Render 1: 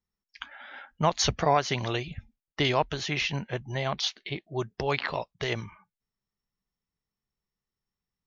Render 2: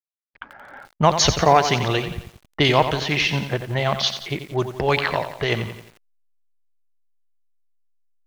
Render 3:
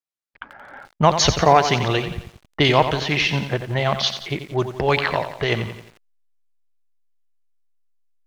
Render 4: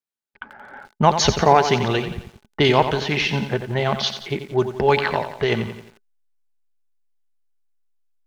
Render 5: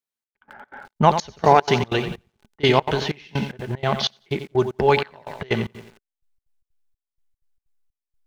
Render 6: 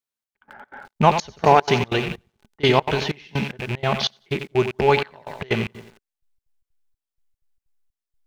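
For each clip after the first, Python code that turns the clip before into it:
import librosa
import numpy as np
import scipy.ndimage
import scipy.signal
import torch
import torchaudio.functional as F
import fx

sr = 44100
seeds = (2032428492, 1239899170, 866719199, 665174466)

y1 = fx.backlash(x, sr, play_db=-45.0)
y1 = fx.env_lowpass(y1, sr, base_hz=1100.0, full_db=-22.5)
y1 = fx.echo_crushed(y1, sr, ms=88, feedback_pct=55, bits=8, wet_db=-9.5)
y1 = y1 * librosa.db_to_amplitude(8.0)
y2 = fx.high_shelf(y1, sr, hz=10000.0, db=-8.0)
y2 = y2 * librosa.db_to_amplitude(1.0)
y3 = fx.small_body(y2, sr, hz=(220.0, 400.0, 850.0, 1500.0), ring_ms=60, db=8)
y3 = y3 * librosa.db_to_amplitude(-2.0)
y4 = fx.step_gate(y3, sr, bpm=188, pattern='xxx...xx.xx.', floor_db=-24.0, edge_ms=4.5)
y5 = fx.rattle_buzz(y4, sr, strikes_db=-32.0, level_db=-19.0)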